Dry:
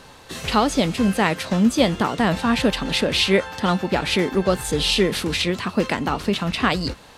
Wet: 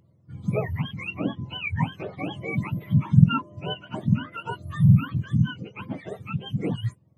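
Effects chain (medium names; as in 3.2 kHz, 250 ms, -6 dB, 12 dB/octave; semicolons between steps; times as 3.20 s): spectrum inverted on a logarithmic axis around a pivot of 730 Hz; spectral contrast expander 1.5:1; trim -1.5 dB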